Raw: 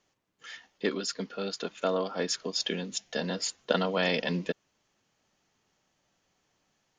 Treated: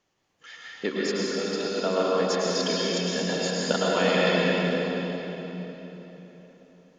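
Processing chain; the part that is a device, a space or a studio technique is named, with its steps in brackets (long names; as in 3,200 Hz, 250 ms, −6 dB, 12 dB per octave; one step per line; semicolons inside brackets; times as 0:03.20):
swimming-pool hall (convolution reverb RT60 3.9 s, pre-delay 100 ms, DRR −6 dB; high-shelf EQ 5,900 Hz −5.5 dB)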